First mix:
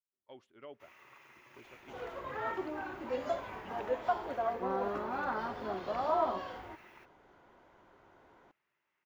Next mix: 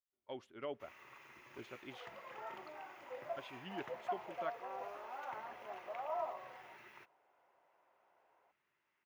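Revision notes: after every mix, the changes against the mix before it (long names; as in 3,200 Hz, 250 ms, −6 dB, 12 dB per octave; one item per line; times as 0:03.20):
speech +6.5 dB
second sound: add four-pole ladder band-pass 850 Hz, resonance 30%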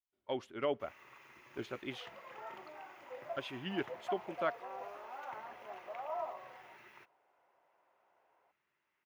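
speech +9.0 dB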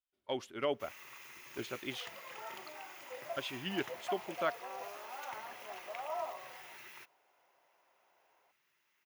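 first sound: add high-shelf EQ 2,500 Hz +7.5 dB
master: add high-shelf EQ 4,000 Hz +12 dB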